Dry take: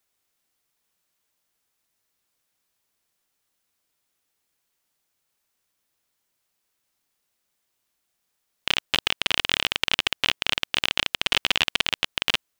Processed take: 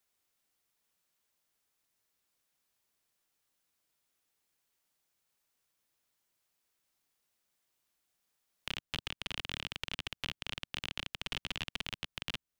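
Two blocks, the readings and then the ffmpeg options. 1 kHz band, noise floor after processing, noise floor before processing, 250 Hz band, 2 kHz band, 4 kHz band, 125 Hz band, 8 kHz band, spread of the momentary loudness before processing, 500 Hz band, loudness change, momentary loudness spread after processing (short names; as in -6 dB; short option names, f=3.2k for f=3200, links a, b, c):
-16.5 dB, under -85 dBFS, -77 dBFS, -10.0 dB, -16.5 dB, -16.5 dB, -5.5 dB, -16.0 dB, 3 LU, -15.5 dB, -16.5 dB, 2 LU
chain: -filter_complex "[0:a]acrossover=split=220[a][b];[b]acompressor=threshold=-40dB:ratio=2[c];[a][c]amix=inputs=2:normalize=0,volume=-4.5dB"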